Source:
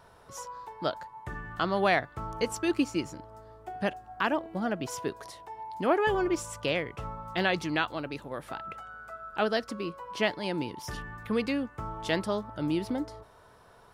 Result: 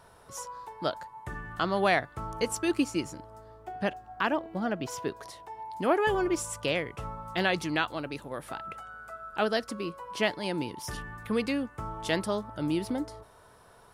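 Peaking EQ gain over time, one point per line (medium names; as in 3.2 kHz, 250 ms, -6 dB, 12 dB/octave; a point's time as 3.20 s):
peaking EQ 10 kHz 0.91 oct
3.28 s +6.5 dB
3.68 s -2.5 dB
5.07 s -2.5 dB
5.88 s +7 dB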